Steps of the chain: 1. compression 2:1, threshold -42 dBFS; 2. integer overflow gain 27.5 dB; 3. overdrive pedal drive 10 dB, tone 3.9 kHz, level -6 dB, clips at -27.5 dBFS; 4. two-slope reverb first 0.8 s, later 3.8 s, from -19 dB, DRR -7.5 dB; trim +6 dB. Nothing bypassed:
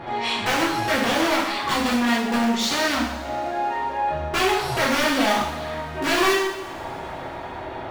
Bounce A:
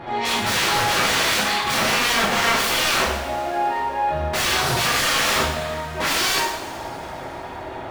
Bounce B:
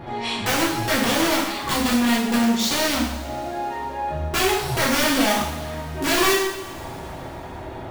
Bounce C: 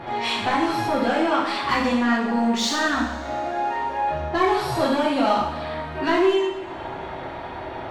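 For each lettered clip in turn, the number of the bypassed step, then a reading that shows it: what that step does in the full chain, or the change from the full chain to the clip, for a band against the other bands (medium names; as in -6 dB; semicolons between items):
1, mean gain reduction 7.5 dB; 3, 8 kHz band +5.0 dB; 2, 8 kHz band -5.5 dB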